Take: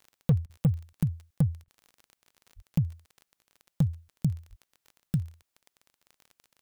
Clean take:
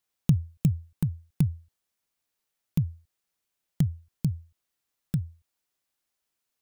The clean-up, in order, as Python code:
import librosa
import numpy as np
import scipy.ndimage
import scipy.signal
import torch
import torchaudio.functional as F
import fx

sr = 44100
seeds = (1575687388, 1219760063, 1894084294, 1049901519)

y = fx.fix_declip(x, sr, threshold_db=-16.5)
y = fx.fix_declick_ar(y, sr, threshold=6.5)
y = fx.fix_deplosive(y, sr, at_s=(2.55, 4.49))
y = fx.fix_interpolate(y, sr, at_s=(0.46, 1.64), length_ms=35.0)